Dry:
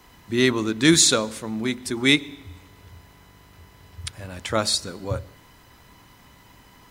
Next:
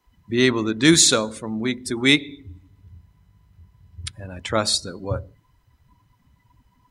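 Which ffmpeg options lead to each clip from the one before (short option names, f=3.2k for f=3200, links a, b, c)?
-af "afftdn=nr=20:nf=-40,volume=1.5dB"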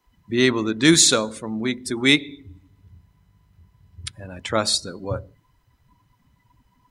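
-af "equalizer=f=70:w=1.2:g=-4.5"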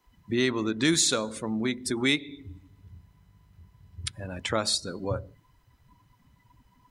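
-af "acompressor=threshold=-27dB:ratio=2"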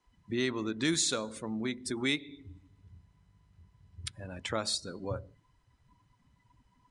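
-af "aresample=22050,aresample=44100,volume=-6dB"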